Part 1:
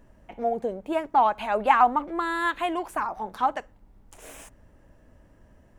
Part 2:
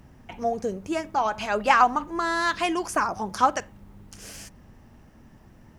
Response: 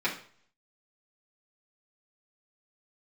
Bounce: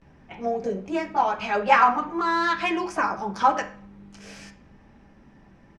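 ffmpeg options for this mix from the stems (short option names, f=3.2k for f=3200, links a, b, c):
-filter_complex "[0:a]volume=-9dB[a];[1:a]adelay=17,volume=-4dB,asplit=2[b][c];[c]volume=-8dB[d];[2:a]atrim=start_sample=2205[e];[d][e]afir=irnorm=-1:irlink=0[f];[a][b][f]amix=inputs=3:normalize=0,lowpass=5.3k"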